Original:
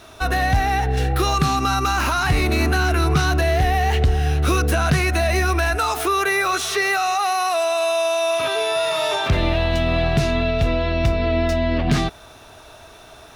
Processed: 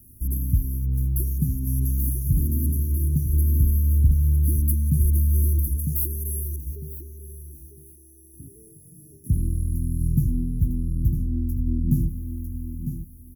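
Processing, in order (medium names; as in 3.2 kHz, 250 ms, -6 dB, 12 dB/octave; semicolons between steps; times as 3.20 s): treble shelf 5.7 kHz +6 dB; static phaser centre 2.6 kHz, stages 6; feedback delay 952 ms, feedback 22%, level -7 dB; tremolo saw down 0.6 Hz, depth 30%; inverse Chebyshev band-stop 890–3800 Hz, stop band 70 dB; peaking EQ 10 kHz +11 dB 2.4 oct, from 6.56 s -5 dB, from 9.24 s +9 dB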